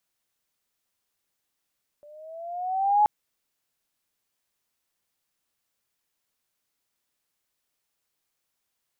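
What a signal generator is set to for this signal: gliding synth tone sine, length 1.03 s, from 584 Hz, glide +6.5 st, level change +32 dB, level -14.5 dB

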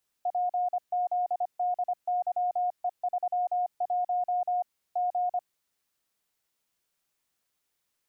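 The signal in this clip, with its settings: Morse "PZDYE31 G" 25 wpm 719 Hz -24.5 dBFS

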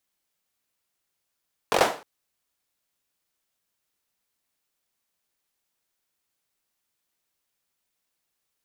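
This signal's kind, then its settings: hand clap length 0.31 s, bursts 5, apart 22 ms, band 620 Hz, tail 0.37 s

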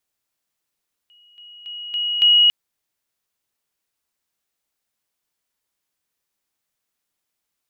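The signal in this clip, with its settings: level ladder 2.9 kHz -50 dBFS, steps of 10 dB, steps 5, 0.28 s 0.00 s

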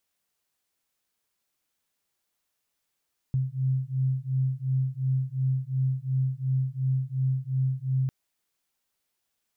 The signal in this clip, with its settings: beating tones 130 Hz, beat 2.8 Hz, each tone -27 dBFS 4.75 s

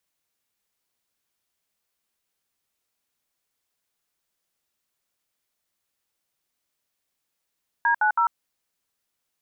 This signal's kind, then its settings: DTMF "D90", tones 96 ms, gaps 66 ms, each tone -20 dBFS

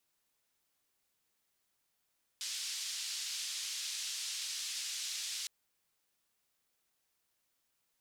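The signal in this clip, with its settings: noise band 4–5.3 kHz, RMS -40 dBFS 3.06 s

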